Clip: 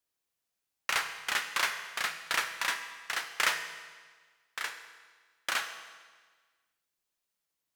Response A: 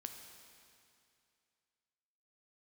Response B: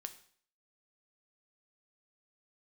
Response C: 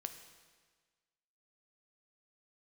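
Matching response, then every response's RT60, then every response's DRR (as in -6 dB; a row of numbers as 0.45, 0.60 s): C; 2.5, 0.55, 1.5 s; 4.5, 8.0, 7.0 dB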